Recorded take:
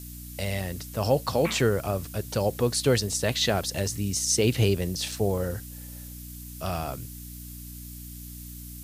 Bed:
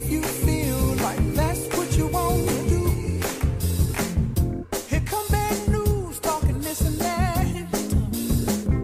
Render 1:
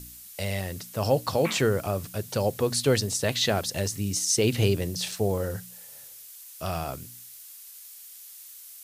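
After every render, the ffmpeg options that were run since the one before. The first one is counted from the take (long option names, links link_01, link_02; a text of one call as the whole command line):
ffmpeg -i in.wav -af "bandreject=frequency=60:width_type=h:width=4,bandreject=frequency=120:width_type=h:width=4,bandreject=frequency=180:width_type=h:width=4,bandreject=frequency=240:width_type=h:width=4,bandreject=frequency=300:width_type=h:width=4" out.wav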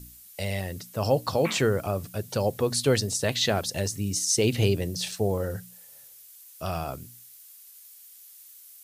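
ffmpeg -i in.wav -af "afftdn=noise_reduction=6:noise_floor=-46" out.wav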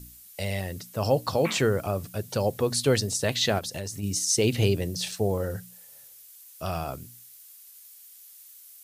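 ffmpeg -i in.wav -filter_complex "[0:a]asplit=3[link_01][link_02][link_03];[link_01]afade=type=out:start_time=3.58:duration=0.02[link_04];[link_02]acompressor=threshold=-30dB:ratio=4:attack=3.2:release=140:knee=1:detection=peak,afade=type=in:start_time=3.58:duration=0.02,afade=type=out:start_time=4.02:duration=0.02[link_05];[link_03]afade=type=in:start_time=4.02:duration=0.02[link_06];[link_04][link_05][link_06]amix=inputs=3:normalize=0" out.wav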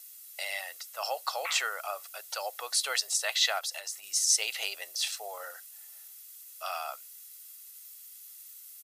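ffmpeg -i in.wav -af "highpass=frequency=850:width=0.5412,highpass=frequency=850:width=1.3066,aecho=1:1:1.5:0.37" out.wav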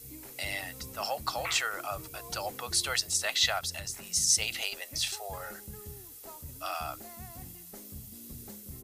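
ffmpeg -i in.wav -i bed.wav -filter_complex "[1:a]volume=-25dB[link_01];[0:a][link_01]amix=inputs=2:normalize=0" out.wav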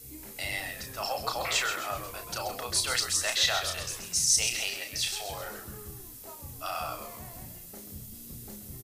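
ffmpeg -i in.wav -filter_complex "[0:a]asplit=2[link_01][link_02];[link_02]adelay=33,volume=-6dB[link_03];[link_01][link_03]amix=inputs=2:normalize=0,asplit=6[link_04][link_05][link_06][link_07][link_08][link_09];[link_05]adelay=131,afreqshift=-97,volume=-8.5dB[link_10];[link_06]adelay=262,afreqshift=-194,volume=-15.6dB[link_11];[link_07]adelay=393,afreqshift=-291,volume=-22.8dB[link_12];[link_08]adelay=524,afreqshift=-388,volume=-29.9dB[link_13];[link_09]adelay=655,afreqshift=-485,volume=-37dB[link_14];[link_04][link_10][link_11][link_12][link_13][link_14]amix=inputs=6:normalize=0" out.wav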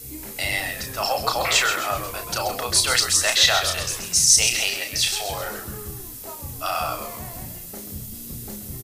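ffmpeg -i in.wav -af "volume=9dB,alimiter=limit=-2dB:level=0:latency=1" out.wav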